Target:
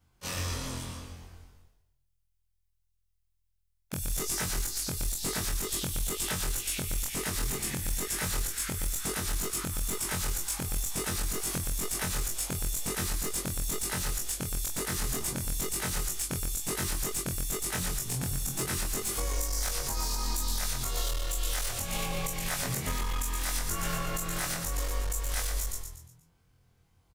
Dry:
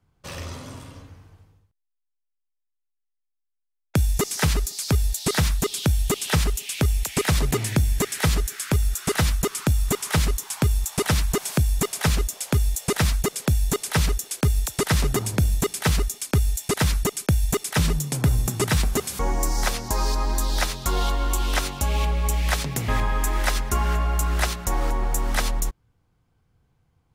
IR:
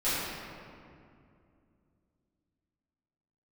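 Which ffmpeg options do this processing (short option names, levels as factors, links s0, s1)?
-filter_complex "[0:a]afftfilt=real='re':imag='-im':win_size=2048:overlap=0.75,acrossover=split=2200|6100[s0][s1][s2];[s0]acompressor=threshold=0.0282:ratio=4[s3];[s1]acompressor=threshold=0.00355:ratio=4[s4];[s2]acompressor=threshold=0.01:ratio=4[s5];[s3][s4][s5]amix=inputs=3:normalize=0,highshelf=f=2600:g=8.5,asplit=2[s6][s7];[s7]asplit=5[s8][s9][s10][s11][s12];[s8]adelay=119,afreqshift=-42,volume=0.447[s13];[s9]adelay=238,afreqshift=-84,volume=0.184[s14];[s10]adelay=357,afreqshift=-126,volume=0.075[s15];[s11]adelay=476,afreqshift=-168,volume=0.0309[s16];[s12]adelay=595,afreqshift=-210,volume=0.0126[s17];[s13][s14][s15][s16][s17]amix=inputs=5:normalize=0[s18];[s6][s18]amix=inputs=2:normalize=0,alimiter=limit=0.075:level=0:latency=1:release=164,aeval=exprs='clip(val(0),-1,0.0335)':c=same,volume=1.33"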